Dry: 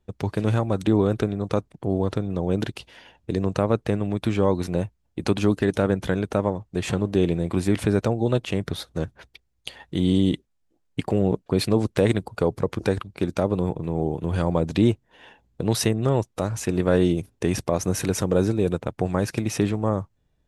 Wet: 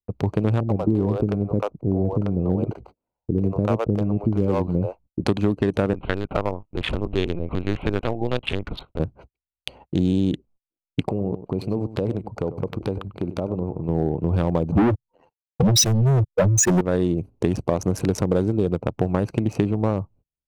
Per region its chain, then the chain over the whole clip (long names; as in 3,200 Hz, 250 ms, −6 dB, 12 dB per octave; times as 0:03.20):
0:00.60–0:05.21: running median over 15 samples + multiband delay without the direct sound lows, highs 90 ms, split 480 Hz
0:05.93–0:09.00: tilt shelving filter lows −8 dB + linear-prediction vocoder at 8 kHz pitch kept
0:11.09–0:13.89: downward compressor 2 to 1, threshold −31 dBFS + single-tap delay 97 ms −13 dB
0:14.72–0:16.81: expanding power law on the bin magnitudes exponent 3.4 + leveller curve on the samples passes 5 + multiband upward and downward expander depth 100%
whole clip: adaptive Wiener filter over 25 samples; noise gate −50 dBFS, range −33 dB; downward compressor, threshold −21 dBFS; level +5.5 dB